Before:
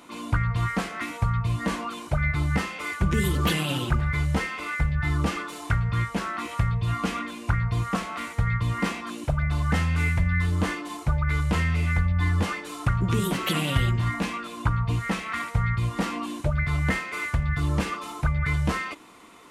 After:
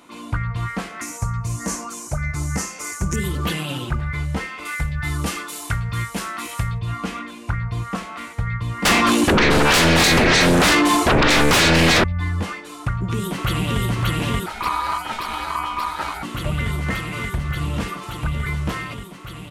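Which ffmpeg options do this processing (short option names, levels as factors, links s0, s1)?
-filter_complex "[0:a]asettb=1/sr,asplit=3[s0][s1][s2];[s0]atrim=end=1.014[s3];[s1]atrim=start=1.01:end=3.16,asetpts=PTS-STARTPTS,afade=t=in:d=0.004:c=qsin,afade=t=out:st=2.146:d=0.004:c=qsin,highshelf=f=4700:t=q:w=3:g=11[s4];[s2]atrim=start=3.156[s5];[s3][s4]acrossfade=d=0.004:c1=hsin:c2=qsin[s6];[s6][s5]acrossfade=d=0.004:c1=qsin:c2=hsin,asettb=1/sr,asplit=3[s7][s8][s9];[s7]atrim=end=4.654[s10];[s8]atrim=start=4.65:end=6.79,asetpts=PTS-STARTPTS,afade=t=in:d=0.004:c=qsin,afade=t=out:st=2.136:d=0.004:c=qsin,aemphasis=mode=production:type=75kf[s11];[s9]atrim=start=6.786[s12];[s10][s11]acrossfade=d=0.004:c1=hsin:c2=qsin[s13];[s13][s12]acrossfade=d=0.004:c1=qsin:c2=hsin,asettb=1/sr,asplit=3[s14][s15][s16];[s14]atrim=end=8.854[s17];[s15]atrim=start=8.85:end=12.04,asetpts=PTS-STARTPTS,afade=t=in:d=0.004:c=qsin,afade=t=out:st=3.186:d=0.004:c=qsin,aeval=exprs='0.266*sin(PI/2*7.94*val(0)/0.266)':c=same[s18];[s16]atrim=start=12.036[s19];[s17][s18]acrossfade=d=0.004:c1=hsin:c2=qsin[s20];[s20][s19]acrossfade=d=0.004:c1=qsin:c2=hsin,asplit=2[s21][s22];[s22]afade=t=in:st=12.79:d=0.01,afade=t=out:st=13.81:d=0.01,aecho=0:1:580|1160|1740|2320|2900|3480|4060|4640|5220|5800|6380|6960:0.944061|0.802452|0.682084|0.579771|0.492806|0.418885|0.356052|0.302644|0.257248|0.21866|0.185861|0.157982[s23];[s21][s23]amix=inputs=2:normalize=0,asettb=1/sr,asplit=3[s24][s25][s26];[s24]atrim=end=14.464[s27];[s25]atrim=start=14.46:end=16.23,asetpts=PTS-STARTPTS,afade=t=in:d=0.004:c=qsin,afade=t=out:st=1.766:d=0.004:c=qsin,aeval=exprs='val(0)*sin(2*PI*1100*n/s)':c=same[s28];[s26]atrim=start=16.226[s29];[s27][s28]acrossfade=d=0.004:c1=hsin:c2=qsin[s30];[s30][s29]acrossfade=d=0.004:c1=qsin:c2=hsin,asettb=1/sr,asplit=3[s31][s32][s33];[s31]atrim=end=17.374[s34];[s32]atrim=start=17.37:end=18.64,asetpts=PTS-STARTPTS,afade=t=in:d=0.004:c=qsin,afade=t=out:st=1.266:d=0.004:c=qsin,volume=5.96,asoftclip=hard,volume=0.168[s35];[s33]atrim=start=18.636[s36];[s34][s35]acrossfade=d=0.004:c1=hsin:c2=qsin[s37];[s37][s36]acrossfade=d=0.004:c1=qsin:c2=hsin"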